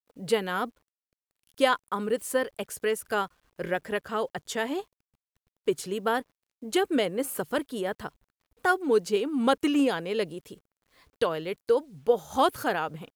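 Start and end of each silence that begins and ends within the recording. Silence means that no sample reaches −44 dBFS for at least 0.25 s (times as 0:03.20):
0:00.69–0:01.52
0:03.27–0:03.59
0:04.83–0:05.67
0:06.22–0:06.62
0:08.09–0:08.65
0:10.54–0:11.21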